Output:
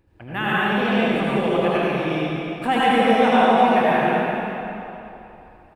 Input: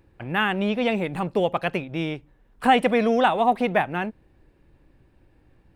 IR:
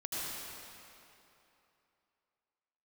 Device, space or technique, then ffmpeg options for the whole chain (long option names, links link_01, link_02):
cave: -filter_complex "[0:a]aecho=1:1:275:0.299[link_01];[1:a]atrim=start_sample=2205[link_02];[link_01][link_02]afir=irnorm=-1:irlink=0"